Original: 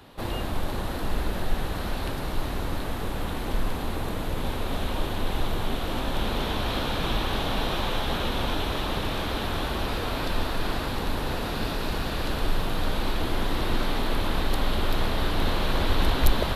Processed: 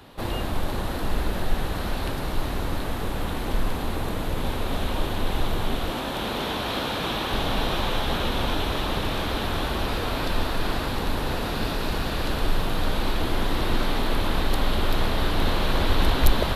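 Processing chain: 5.91–7.32 HPF 170 Hz 6 dB/oct; gain +2 dB

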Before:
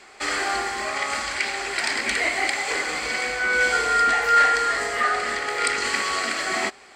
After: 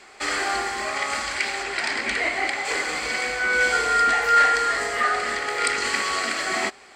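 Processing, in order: 1.62–2.64 high shelf 8800 Hz -> 4900 Hz -10.5 dB

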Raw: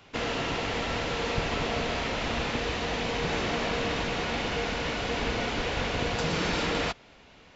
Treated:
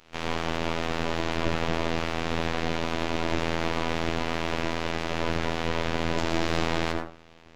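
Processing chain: on a send at -2 dB: low shelf 350 Hz +8.5 dB + reverb RT60 0.45 s, pre-delay 72 ms; on the sum: robotiser 82.5 Hz; full-wave rectifier

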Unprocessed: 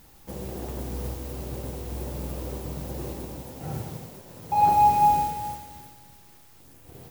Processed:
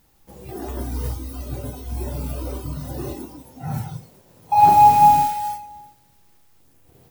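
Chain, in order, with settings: spectral noise reduction 14 dB; gain +7 dB

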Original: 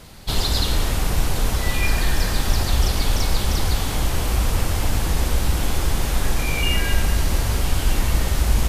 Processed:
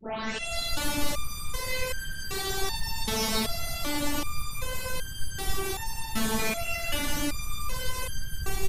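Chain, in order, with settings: tape start at the beginning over 0.59 s; HPF 49 Hz; AGC gain up to 6 dB; on a send: feedback echo 0.124 s, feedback 36%, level -8 dB; on the sum: whisperiser; stepped resonator 2.6 Hz 220–1600 Hz; gain +5 dB

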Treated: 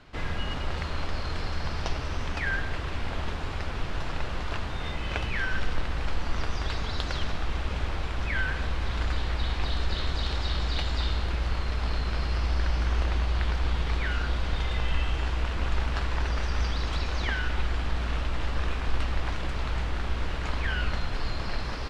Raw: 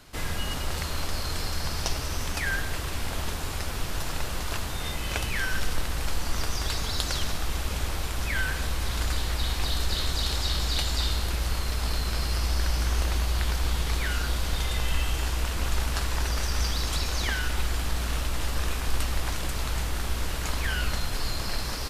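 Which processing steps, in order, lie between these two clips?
LPF 3100 Hz 12 dB/oct

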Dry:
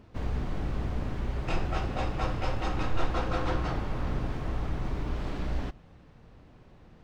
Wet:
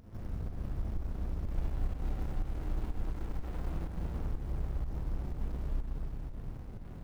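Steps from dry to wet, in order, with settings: compressor 8:1, threshold -43 dBFS, peak gain reduction 23 dB; low shelf 130 Hz +6.5 dB; sample-rate reducer 5400 Hz; bell 5400 Hz -8 dB 2.5 oct; notches 60/120/180/240 Hz; Schroeder reverb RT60 3.9 s, combs from 33 ms, DRR -7.5 dB; pump 124 bpm, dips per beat 1, -8 dB, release 0.174 s; running maximum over 65 samples; gain +1 dB

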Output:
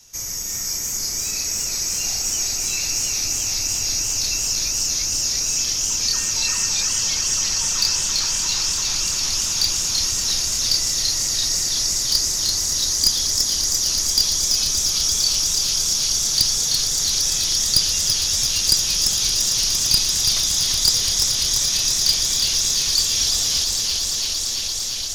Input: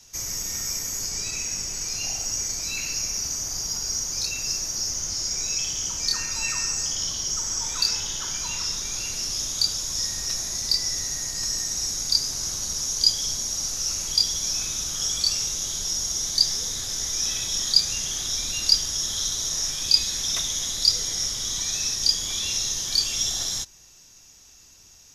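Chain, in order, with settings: one-sided fold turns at -11 dBFS; high shelf 7400 Hz +5.5 dB; swelling echo 0.114 s, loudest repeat 8, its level -12 dB; warbling echo 0.339 s, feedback 60%, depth 177 cents, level -5 dB

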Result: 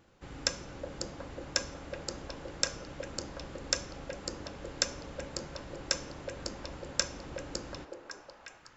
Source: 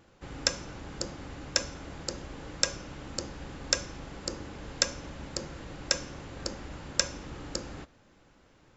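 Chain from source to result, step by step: delay with a stepping band-pass 0.367 s, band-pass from 490 Hz, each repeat 0.7 oct, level -0.5 dB; gain -3.5 dB

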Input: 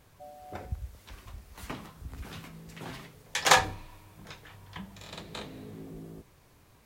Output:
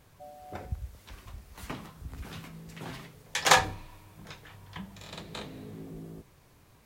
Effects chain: bell 150 Hz +2 dB

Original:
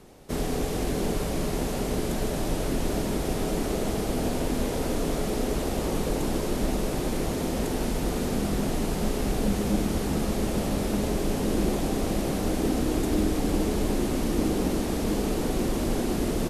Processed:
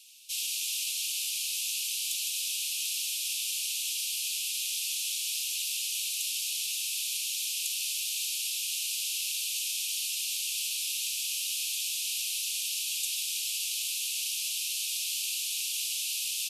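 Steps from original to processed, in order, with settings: steep high-pass 2500 Hz 96 dB/oct; gain +8.5 dB

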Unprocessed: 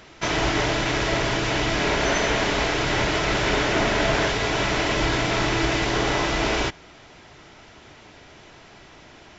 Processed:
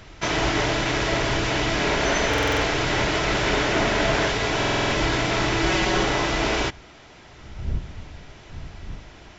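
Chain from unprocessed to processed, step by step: wind noise 85 Hz -38 dBFS; 5.65–6.05 comb 5.4 ms, depth 69%; stuck buffer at 2.29/4.58, samples 2048, times 6

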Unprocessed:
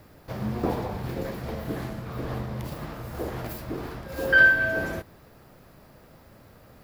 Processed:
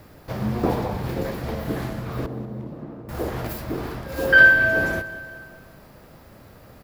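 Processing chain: 2.26–3.09 band-pass 280 Hz, Q 1.2; on a send: feedback echo 0.191 s, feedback 59%, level -17.5 dB; on the sum: gain +4.5 dB

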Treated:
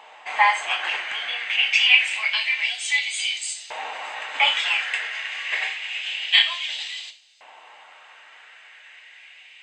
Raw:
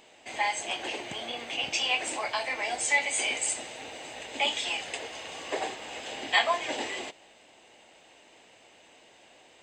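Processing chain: tone controls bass +7 dB, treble -14 dB; non-linear reverb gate 0.13 s falling, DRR 5 dB; LFO high-pass saw up 0.27 Hz 900–4900 Hz; gain +9 dB

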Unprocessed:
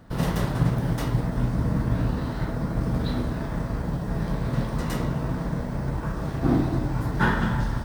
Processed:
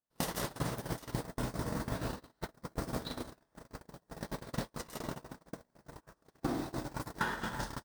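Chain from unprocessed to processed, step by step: gate -22 dBFS, range -50 dB; tone controls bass -13 dB, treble +10 dB; compressor 12:1, threshold -39 dBFS, peak gain reduction 19.5 dB; gain +7 dB

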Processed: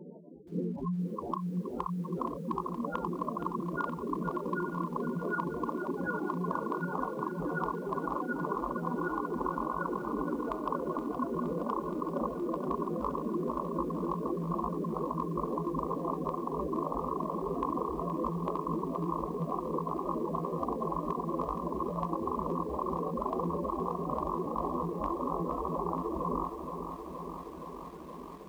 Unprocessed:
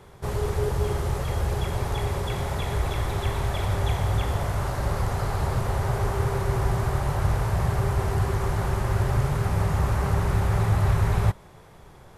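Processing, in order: rattling part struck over -22 dBFS, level -17 dBFS; HPF 410 Hz 12 dB/oct; reverb removal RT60 0.62 s; spectral gate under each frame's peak -10 dB strong; reverb removal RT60 0.94 s; compressor 8:1, threshold -38 dBFS, peak gain reduction 9 dB; hard clip -28.5 dBFS, distortion -35 dB; on a send: thin delay 0.101 s, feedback 76%, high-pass 4900 Hz, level -19.5 dB; on the sum: speed mistake 78 rpm record played at 33 rpm; lo-fi delay 0.47 s, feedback 80%, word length 11-bit, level -8.5 dB; gain +7.5 dB

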